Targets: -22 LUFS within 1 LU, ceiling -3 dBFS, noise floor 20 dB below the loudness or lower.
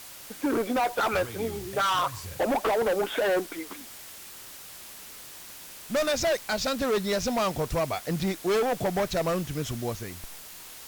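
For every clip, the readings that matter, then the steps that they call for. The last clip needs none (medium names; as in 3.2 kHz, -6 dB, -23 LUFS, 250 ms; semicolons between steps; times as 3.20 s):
noise floor -45 dBFS; noise floor target -48 dBFS; loudness -27.5 LUFS; peak level -19.5 dBFS; loudness target -22.0 LUFS
-> noise reduction 6 dB, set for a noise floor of -45 dBFS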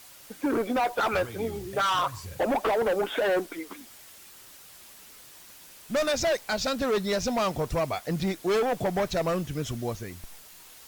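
noise floor -50 dBFS; loudness -28.0 LUFS; peak level -20.0 dBFS; loudness target -22.0 LUFS
-> trim +6 dB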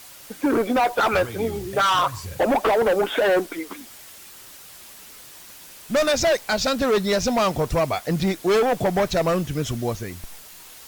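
loudness -22.0 LUFS; peak level -14.0 dBFS; noise floor -44 dBFS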